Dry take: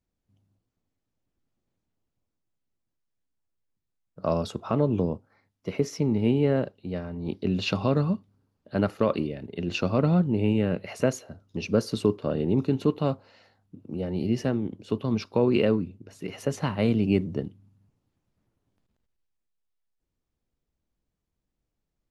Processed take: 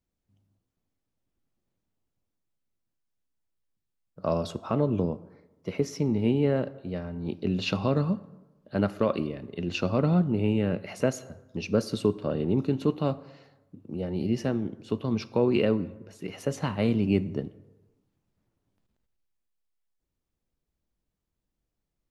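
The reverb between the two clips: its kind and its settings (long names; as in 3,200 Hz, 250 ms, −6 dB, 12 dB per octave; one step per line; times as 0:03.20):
dense smooth reverb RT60 1.1 s, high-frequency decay 0.55×, DRR 15.5 dB
level −1.5 dB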